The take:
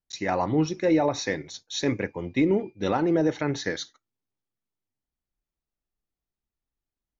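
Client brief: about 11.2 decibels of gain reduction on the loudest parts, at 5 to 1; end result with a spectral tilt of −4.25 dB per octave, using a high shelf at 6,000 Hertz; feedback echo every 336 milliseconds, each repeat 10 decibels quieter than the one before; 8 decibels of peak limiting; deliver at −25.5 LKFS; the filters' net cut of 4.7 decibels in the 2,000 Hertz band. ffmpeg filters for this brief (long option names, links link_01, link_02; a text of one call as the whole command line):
ffmpeg -i in.wav -af "equalizer=frequency=2000:width_type=o:gain=-6,highshelf=frequency=6000:gain=4.5,acompressor=threshold=-31dB:ratio=5,alimiter=level_in=4dB:limit=-24dB:level=0:latency=1,volume=-4dB,aecho=1:1:336|672|1008|1344:0.316|0.101|0.0324|0.0104,volume=12dB" out.wav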